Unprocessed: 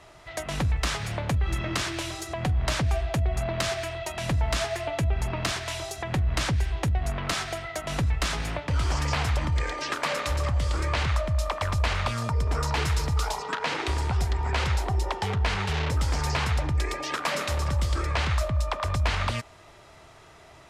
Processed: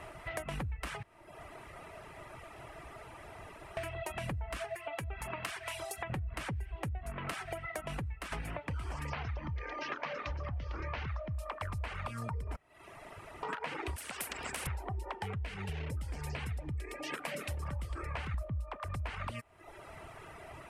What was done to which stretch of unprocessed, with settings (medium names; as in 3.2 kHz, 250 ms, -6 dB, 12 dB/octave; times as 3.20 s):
1.03–3.77 s: room tone
4.75–6.10 s: bass shelf 470 Hz -11.5 dB
7.68–8.32 s: fade out, to -10.5 dB
9.10–11.34 s: steep low-pass 6.2 kHz 72 dB/octave
12.56–13.43 s: room tone
13.96–14.67 s: spectrum-flattening compressor 10:1
15.35–17.63 s: peaking EQ 1.1 kHz -9 dB 1.3 oct
18.34–18.77 s: bass shelf 490 Hz +9 dB
whole clip: reverb removal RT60 0.77 s; high-order bell 5 kHz -10 dB 1.3 oct; compression, threshold -41 dBFS; trim +4 dB